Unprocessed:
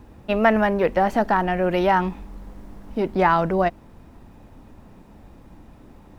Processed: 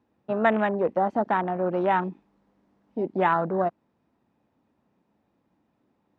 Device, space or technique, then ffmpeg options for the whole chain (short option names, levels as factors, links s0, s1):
over-cleaned archive recording: -af "highpass=160,lowpass=5600,afwtdn=0.0631,volume=0.631"